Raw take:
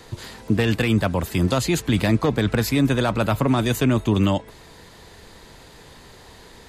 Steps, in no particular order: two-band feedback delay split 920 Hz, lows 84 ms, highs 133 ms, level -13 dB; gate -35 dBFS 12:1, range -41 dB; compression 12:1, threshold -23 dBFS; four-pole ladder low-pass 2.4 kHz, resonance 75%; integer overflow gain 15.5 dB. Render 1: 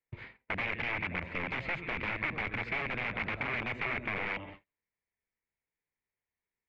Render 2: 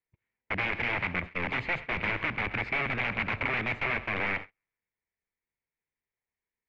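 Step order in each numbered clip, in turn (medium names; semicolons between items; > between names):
two-band feedback delay > integer overflow > gate > compression > four-pole ladder low-pass; integer overflow > four-pole ladder low-pass > compression > two-band feedback delay > gate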